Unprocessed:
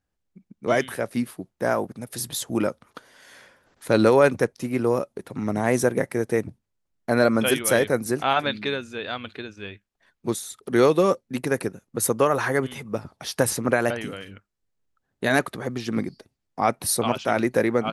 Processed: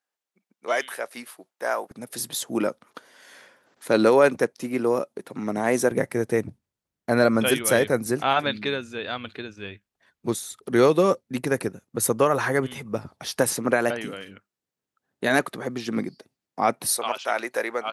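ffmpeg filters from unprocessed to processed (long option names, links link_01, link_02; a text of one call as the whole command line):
ffmpeg -i in.wav -af "asetnsamples=nb_out_samples=441:pad=0,asendcmd='1.91 highpass f 200;5.91 highpass f 57;13.39 highpass f 160;16.92 highpass f 650',highpass=640" out.wav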